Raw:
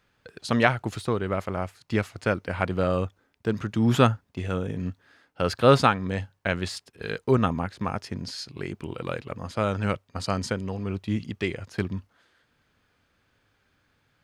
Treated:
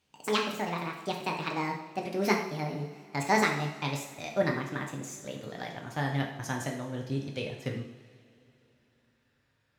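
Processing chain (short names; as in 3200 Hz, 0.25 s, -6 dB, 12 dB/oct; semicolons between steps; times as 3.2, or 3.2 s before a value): speed glide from 184% -> 107%; two-slope reverb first 0.67 s, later 3.4 s, from -19 dB, DRR 0.5 dB; gain -8.5 dB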